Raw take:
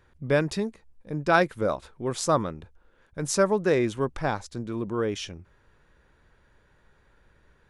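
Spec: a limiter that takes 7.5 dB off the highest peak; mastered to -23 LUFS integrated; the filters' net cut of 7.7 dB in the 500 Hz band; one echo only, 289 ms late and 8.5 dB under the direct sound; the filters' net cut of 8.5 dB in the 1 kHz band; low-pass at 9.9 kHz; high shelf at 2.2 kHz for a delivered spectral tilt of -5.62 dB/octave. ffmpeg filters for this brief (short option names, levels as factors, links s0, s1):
-af "lowpass=9900,equalizer=f=500:t=o:g=-7.5,equalizer=f=1000:t=o:g=-8,highshelf=f=2200:g=-5.5,alimiter=limit=0.0944:level=0:latency=1,aecho=1:1:289:0.376,volume=3.55"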